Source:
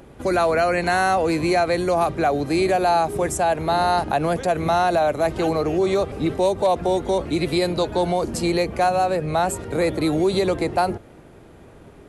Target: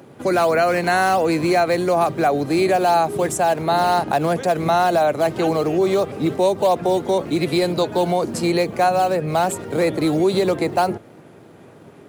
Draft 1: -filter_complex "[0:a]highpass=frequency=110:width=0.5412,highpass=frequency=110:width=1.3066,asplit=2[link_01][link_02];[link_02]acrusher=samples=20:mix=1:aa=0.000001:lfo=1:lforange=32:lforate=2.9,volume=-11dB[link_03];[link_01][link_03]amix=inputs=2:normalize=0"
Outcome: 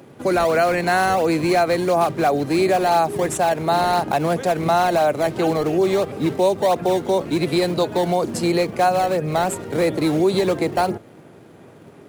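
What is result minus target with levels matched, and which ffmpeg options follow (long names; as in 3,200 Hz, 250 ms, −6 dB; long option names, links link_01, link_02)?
sample-and-hold swept by an LFO: distortion +10 dB
-filter_complex "[0:a]highpass=frequency=110:width=0.5412,highpass=frequency=110:width=1.3066,asplit=2[link_01][link_02];[link_02]acrusher=samples=7:mix=1:aa=0.000001:lfo=1:lforange=11.2:lforate=2.9,volume=-11dB[link_03];[link_01][link_03]amix=inputs=2:normalize=0"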